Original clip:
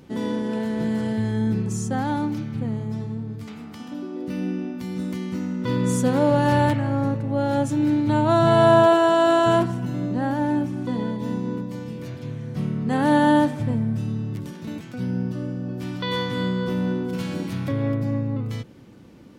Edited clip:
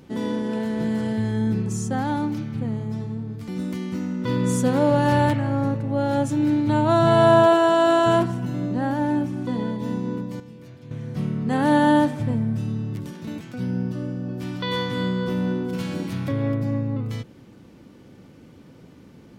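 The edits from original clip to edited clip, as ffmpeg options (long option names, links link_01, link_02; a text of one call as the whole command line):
ffmpeg -i in.wav -filter_complex "[0:a]asplit=4[link_01][link_02][link_03][link_04];[link_01]atrim=end=3.482[link_05];[link_02]atrim=start=4.878:end=11.802[link_06];[link_03]atrim=start=11.798:end=12.312,asetpts=PTS-STARTPTS,volume=-9.5dB[link_07];[link_04]atrim=start=12.308[link_08];[link_05][link_06]acrossfade=duration=0.004:curve1=hsin:curve2=hsin[link_09];[link_09][link_07]acrossfade=duration=0.004:curve1=hsin:curve2=hsin[link_10];[link_10][link_08]acrossfade=duration=0.004:curve1=hsin:curve2=hsin" out.wav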